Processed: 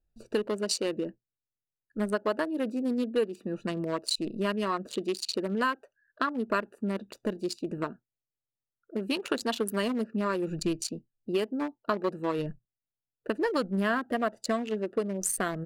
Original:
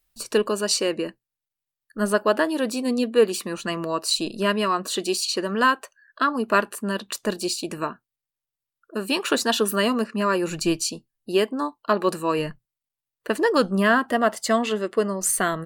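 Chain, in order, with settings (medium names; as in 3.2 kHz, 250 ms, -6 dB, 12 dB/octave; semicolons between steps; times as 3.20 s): local Wiener filter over 41 samples; compression 2.5:1, threshold -28 dBFS, peak gain reduction 10.5 dB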